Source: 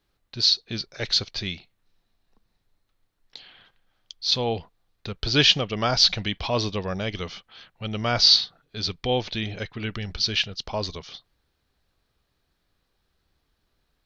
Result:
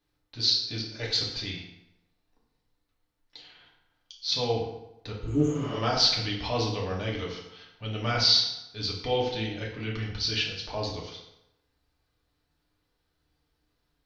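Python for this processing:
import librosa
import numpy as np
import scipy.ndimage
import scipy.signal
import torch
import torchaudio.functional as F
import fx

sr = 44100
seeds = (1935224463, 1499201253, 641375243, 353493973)

y = fx.spec_repair(x, sr, seeds[0], start_s=5.19, length_s=0.58, low_hz=470.0, high_hz=6400.0, source='both')
y = fx.rev_fdn(y, sr, rt60_s=0.87, lf_ratio=0.95, hf_ratio=0.75, size_ms=20.0, drr_db=-3.5)
y = fx.doppler_dist(y, sr, depth_ms=0.14)
y = F.gain(torch.from_numpy(y), -8.0).numpy()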